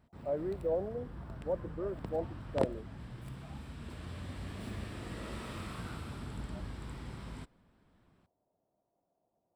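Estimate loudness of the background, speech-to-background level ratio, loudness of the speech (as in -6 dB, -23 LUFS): -44.0 LUFS, 6.0 dB, -38.0 LUFS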